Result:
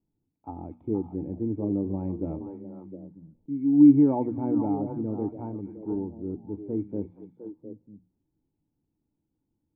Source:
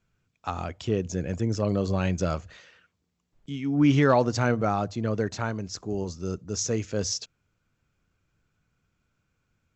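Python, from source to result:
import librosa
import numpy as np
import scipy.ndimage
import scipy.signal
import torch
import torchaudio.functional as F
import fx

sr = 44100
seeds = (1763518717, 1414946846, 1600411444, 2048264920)

y = fx.formant_cascade(x, sr, vowel='u')
y = fx.hum_notches(y, sr, base_hz=60, count=4)
y = fx.echo_stepped(y, sr, ms=236, hz=3000.0, octaves=-1.4, feedback_pct=70, wet_db=-2.0)
y = y * 10.0 ** (7.0 / 20.0)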